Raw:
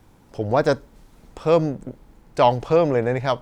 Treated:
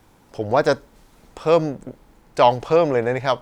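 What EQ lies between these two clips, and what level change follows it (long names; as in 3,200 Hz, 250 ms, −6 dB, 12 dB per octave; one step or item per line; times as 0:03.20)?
low-shelf EQ 310 Hz −7 dB
+3.0 dB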